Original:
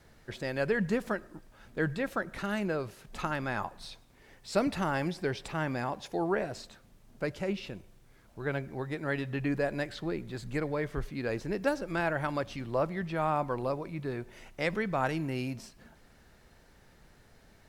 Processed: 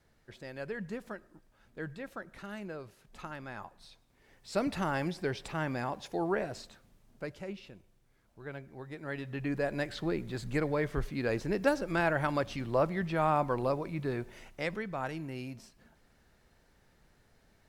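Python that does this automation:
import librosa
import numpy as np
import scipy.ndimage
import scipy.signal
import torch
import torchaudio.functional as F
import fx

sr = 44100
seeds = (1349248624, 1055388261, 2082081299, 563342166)

y = fx.gain(x, sr, db=fx.line((3.91, -10.0), (4.77, -1.5), (6.59, -1.5), (7.7, -10.0), (8.7, -10.0), (10.01, 1.5), (14.24, 1.5), (14.87, -6.5)))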